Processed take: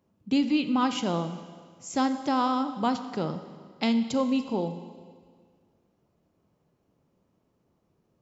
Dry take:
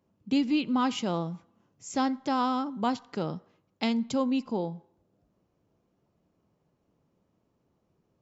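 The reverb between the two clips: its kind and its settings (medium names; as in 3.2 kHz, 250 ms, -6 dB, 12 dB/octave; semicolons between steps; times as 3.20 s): Schroeder reverb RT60 1.8 s, combs from 31 ms, DRR 10 dB; trim +1.5 dB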